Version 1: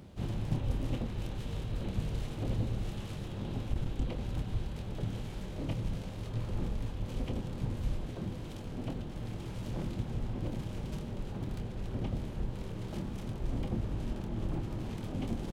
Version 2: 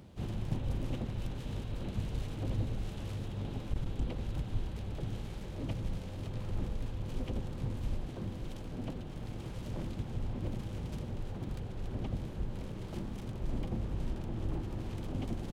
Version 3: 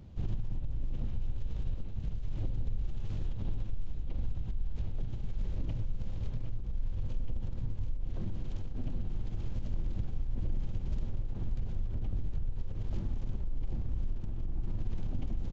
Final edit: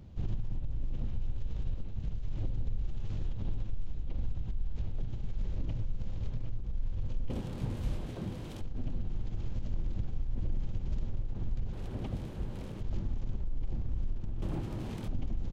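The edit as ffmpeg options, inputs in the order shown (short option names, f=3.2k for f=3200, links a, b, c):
-filter_complex "[0:a]asplit=2[a][b];[2:a]asplit=4[c][d][e][f];[c]atrim=end=7.302[g];[a]atrim=start=7.298:end=8.612[h];[d]atrim=start=8.608:end=11.732[i];[1:a]atrim=start=11.728:end=12.812[j];[e]atrim=start=12.808:end=14.422[k];[b]atrim=start=14.418:end=15.082[l];[f]atrim=start=15.078[m];[g][h]acrossfade=d=0.004:c1=hsin:c2=hsin[n];[n][i]acrossfade=d=0.004:c1=hsin:c2=hsin[o];[o][j]acrossfade=d=0.004:c1=hsin:c2=hsin[p];[p][k]acrossfade=d=0.004:c1=hsin:c2=hsin[q];[q][l]acrossfade=d=0.004:c1=hsin:c2=hsin[r];[r][m]acrossfade=d=0.004:c1=hsin:c2=hsin"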